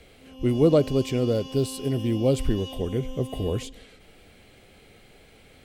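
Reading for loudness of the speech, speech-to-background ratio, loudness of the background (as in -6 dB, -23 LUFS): -25.0 LUFS, 14.0 dB, -39.0 LUFS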